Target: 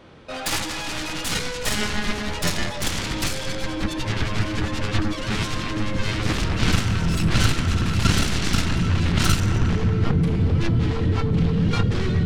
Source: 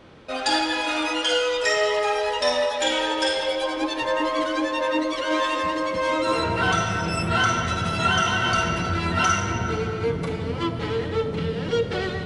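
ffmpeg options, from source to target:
-af "aeval=exprs='0.355*(cos(1*acos(clip(val(0)/0.355,-1,1)))-cos(1*PI/2))+0.0794*(cos(3*acos(clip(val(0)/0.355,-1,1)))-cos(3*PI/2))+0.0126*(cos(6*acos(clip(val(0)/0.355,-1,1)))-cos(6*PI/2))+0.0708*(cos(7*acos(clip(val(0)/0.355,-1,1)))-cos(7*PI/2))':c=same,asubboost=boost=7:cutoff=240"

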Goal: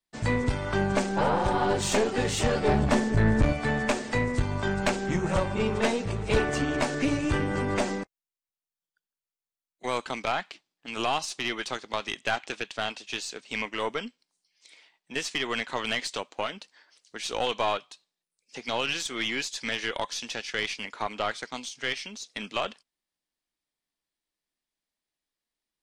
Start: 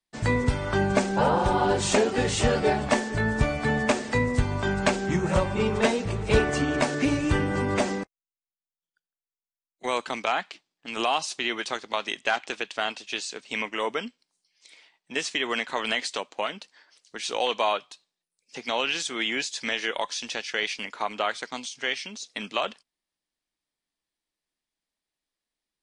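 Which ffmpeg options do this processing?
-filter_complex "[0:a]asettb=1/sr,asplit=3[s0][s1][s2];[s0]atrim=end=2.684[s3];[s1]atrim=start=2.68:end=3.53,asetpts=PTS-STARTPTS,afade=t=in:d=0.004:c=qsin,afade=t=out:st=0.846:d=0.004:c=qsin,lowshelf=f=340:g=11.5[s4];[s2]atrim=start=3.526[s5];[s3][s4]acrossfade=d=0.004:c1=hsin:c2=qsin[s6];[s6][s5]acrossfade=d=0.004:c1=qsin:c2=hsin,aeval=exprs='(tanh(6.31*val(0)+0.45)-tanh(0.45))/6.31':c=same"

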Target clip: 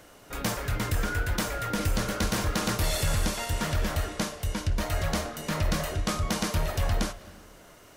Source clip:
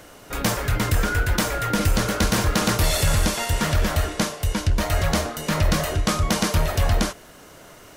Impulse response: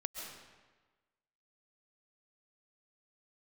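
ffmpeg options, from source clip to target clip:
-filter_complex "[0:a]asplit=2[s0][s1];[1:a]atrim=start_sample=2205,lowpass=5700,adelay=56[s2];[s1][s2]afir=irnorm=-1:irlink=0,volume=0.188[s3];[s0][s3]amix=inputs=2:normalize=0,volume=0.447"

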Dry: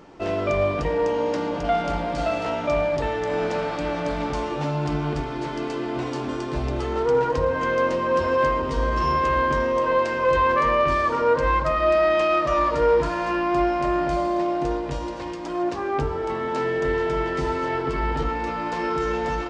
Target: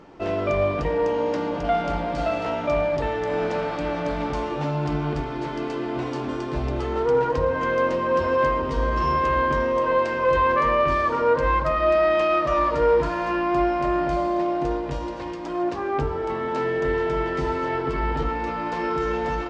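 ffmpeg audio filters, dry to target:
-af "highshelf=f=6100:g=-9"

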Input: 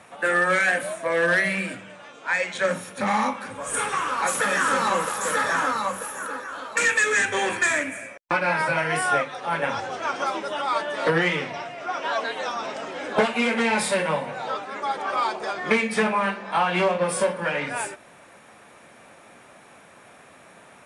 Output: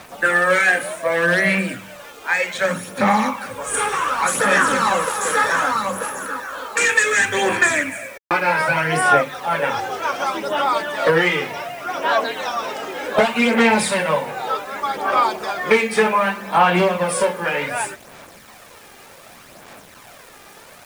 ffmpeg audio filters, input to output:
-af "acrusher=bits=7:mix=0:aa=0.000001,aphaser=in_gain=1:out_gain=1:delay=2.5:decay=0.41:speed=0.66:type=sinusoidal,volume=1.58"

